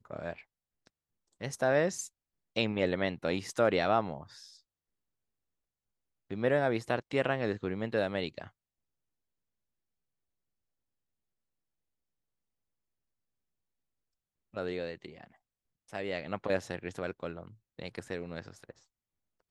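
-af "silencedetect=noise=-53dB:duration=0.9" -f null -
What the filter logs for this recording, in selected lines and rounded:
silence_start: 4.60
silence_end: 6.30 | silence_duration: 1.71
silence_start: 8.49
silence_end: 14.54 | silence_duration: 6.04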